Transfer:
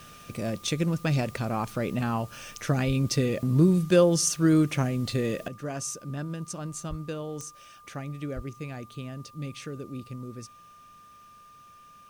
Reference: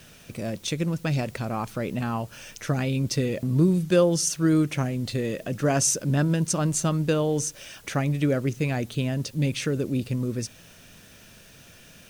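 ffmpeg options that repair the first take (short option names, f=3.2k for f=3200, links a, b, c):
-filter_complex "[0:a]adeclick=t=4,bandreject=f=1.2k:w=30,asplit=3[a][b][c];[a]afade=t=out:st=2.86:d=0.02[d];[b]highpass=f=140:w=0.5412,highpass=f=140:w=1.3066,afade=t=in:st=2.86:d=0.02,afade=t=out:st=2.98:d=0.02[e];[c]afade=t=in:st=2.98:d=0.02[f];[d][e][f]amix=inputs=3:normalize=0,asplit=3[g][h][i];[g]afade=t=out:st=6.89:d=0.02[j];[h]highpass=f=140:w=0.5412,highpass=f=140:w=1.3066,afade=t=in:st=6.89:d=0.02,afade=t=out:st=7.01:d=0.02[k];[i]afade=t=in:st=7.01:d=0.02[l];[j][k][l]amix=inputs=3:normalize=0,asplit=3[m][n][o];[m]afade=t=out:st=8.35:d=0.02[p];[n]highpass=f=140:w=0.5412,highpass=f=140:w=1.3066,afade=t=in:st=8.35:d=0.02,afade=t=out:st=8.47:d=0.02[q];[o]afade=t=in:st=8.47:d=0.02[r];[p][q][r]amix=inputs=3:normalize=0,asetnsamples=n=441:p=0,asendcmd='5.48 volume volume 11.5dB',volume=0dB"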